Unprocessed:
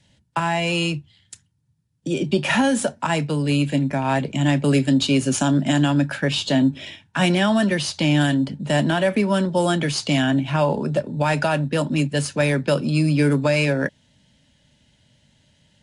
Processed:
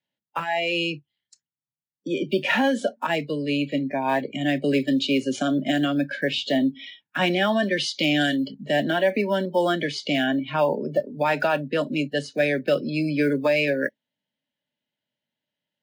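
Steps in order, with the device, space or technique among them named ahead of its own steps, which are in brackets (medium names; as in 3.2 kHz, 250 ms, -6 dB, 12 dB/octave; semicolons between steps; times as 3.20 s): early digital voice recorder (band-pass 290–3600 Hz; block-companded coder 7-bit); spectral noise reduction 22 dB; 7.77–8.52 s: treble shelf 3.3 kHz +8.5 dB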